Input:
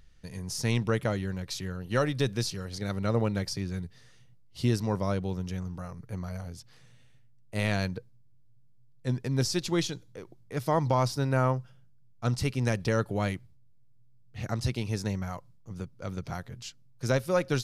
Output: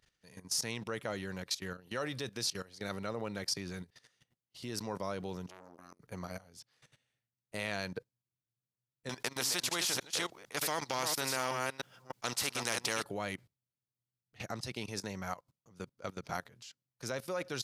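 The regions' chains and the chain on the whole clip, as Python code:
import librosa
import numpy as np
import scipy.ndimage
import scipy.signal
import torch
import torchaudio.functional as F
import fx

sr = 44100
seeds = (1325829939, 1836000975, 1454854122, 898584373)

y = fx.chain(x, sr, fx.high_shelf(hz=2400.0, db=10.0),
    fx.transformer_sat(knee_hz=1200.0), at=(5.48, 6.0))
y = fx.chain(y, sr, fx.reverse_delay(ms=303, wet_db=-7.5),
    fx.spectral_comp(ratio=2.0), at=(9.09, 13.04))
y = fx.level_steps(y, sr, step_db=18)
y = fx.highpass(y, sr, hz=490.0, slope=6)
y = y * 10.0 ** (4.0 / 20.0)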